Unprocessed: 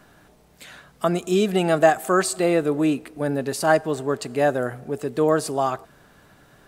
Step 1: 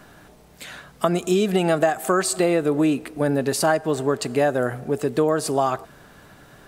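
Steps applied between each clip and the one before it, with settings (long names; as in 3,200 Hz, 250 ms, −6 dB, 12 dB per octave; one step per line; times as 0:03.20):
downward compressor 5 to 1, threshold −21 dBFS, peak gain reduction 10.5 dB
level +5 dB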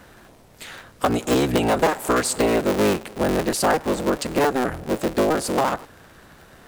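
sub-harmonics by changed cycles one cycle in 3, inverted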